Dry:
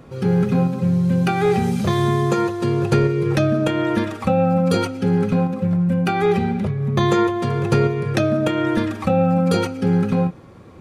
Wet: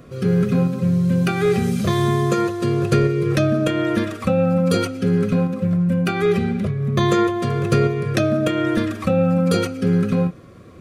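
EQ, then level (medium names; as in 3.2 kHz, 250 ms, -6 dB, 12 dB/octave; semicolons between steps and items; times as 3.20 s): Butterworth band-stop 860 Hz, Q 3.6; treble shelf 7 kHz +4.5 dB; 0.0 dB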